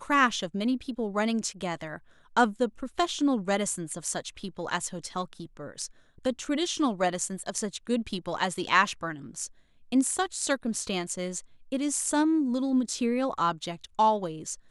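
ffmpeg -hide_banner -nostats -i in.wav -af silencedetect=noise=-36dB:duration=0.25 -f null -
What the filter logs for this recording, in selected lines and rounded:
silence_start: 1.96
silence_end: 2.37 | silence_duration: 0.40
silence_start: 5.86
silence_end: 6.25 | silence_duration: 0.39
silence_start: 9.47
silence_end: 9.92 | silence_duration: 0.45
silence_start: 11.40
silence_end: 11.72 | silence_duration: 0.32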